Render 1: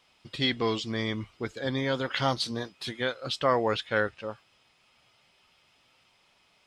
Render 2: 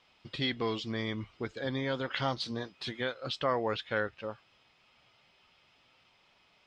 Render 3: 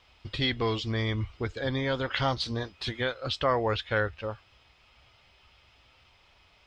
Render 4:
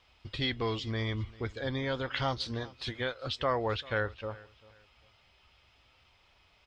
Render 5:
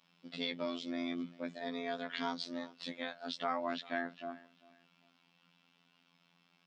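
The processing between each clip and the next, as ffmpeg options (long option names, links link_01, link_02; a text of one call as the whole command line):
ffmpeg -i in.wav -filter_complex "[0:a]lowpass=5000,asplit=2[link_01][link_02];[link_02]acompressor=threshold=-35dB:ratio=6,volume=2dB[link_03];[link_01][link_03]amix=inputs=2:normalize=0,volume=-7.5dB" out.wav
ffmpeg -i in.wav -af "lowshelf=frequency=110:width_type=q:width=1.5:gain=12.5,volume=4.5dB" out.wav
ffmpeg -i in.wav -af "aecho=1:1:394|788:0.0841|0.0236,volume=-4dB" out.wav
ffmpeg -i in.wav -af "afreqshift=140,afftfilt=real='hypot(re,im)*cos(PI*b)':imag='0':win_size=2048:overlap=0.75,volume=-3dB" out.wav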